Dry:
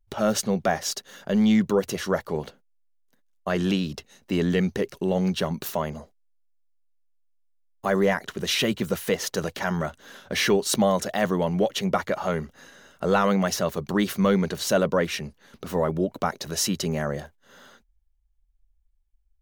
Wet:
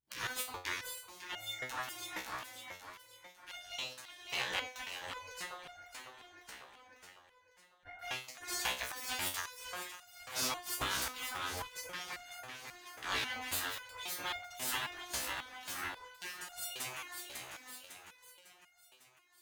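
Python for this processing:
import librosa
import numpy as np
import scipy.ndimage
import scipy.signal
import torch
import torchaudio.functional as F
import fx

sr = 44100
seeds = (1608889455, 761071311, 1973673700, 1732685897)

y = np.where(x < 0.0, 10.0 ** (-12.0 / 20.0) * x, x)
y = fx.lowpass_res(y, sr, hz=1300.0, q=7.5, at=(5.46, 7.99))
y = fx.spec_gate(y, sr, threshold_db=-20, keep='weak')
y = fx.echo_feedback(y, sr, ms=551, feedback_pct=56, wet_db=-8)
y = fx.resonator_held(y, sr, hz=3.7, low_hz=64.0, high_hz=710.0)
y = F.gain(torch.from_numpy(y), 11.0).numpy()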